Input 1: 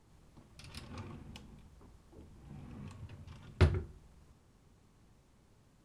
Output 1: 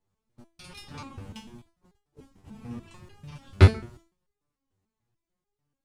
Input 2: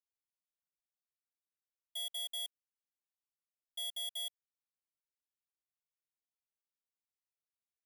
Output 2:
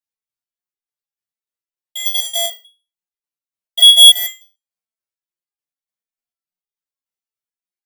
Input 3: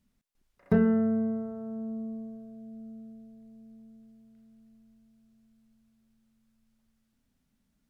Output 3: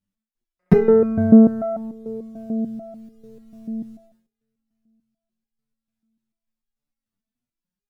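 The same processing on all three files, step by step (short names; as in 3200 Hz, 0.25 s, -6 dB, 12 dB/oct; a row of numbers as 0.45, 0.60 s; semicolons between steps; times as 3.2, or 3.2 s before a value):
gate -54 dBFS, range -26 dB; stepped resonator 6.8 Hz 97–410 Hz; normalise peaks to -1.5 dBFS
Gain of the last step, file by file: +20.5, +38.0, +25.5 dB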